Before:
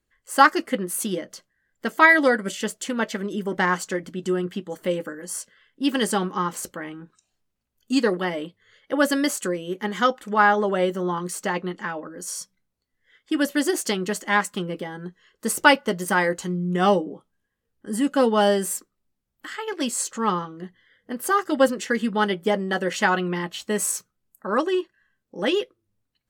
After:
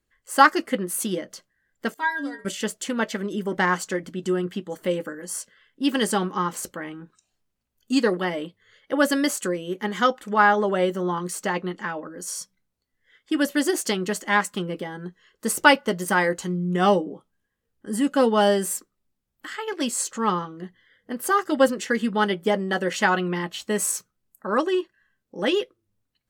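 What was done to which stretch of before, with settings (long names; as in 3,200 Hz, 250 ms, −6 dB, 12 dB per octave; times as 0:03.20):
0:01.94–0:02.45: stiff-string resonator 140 Hz, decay 0.41 s, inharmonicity 0.008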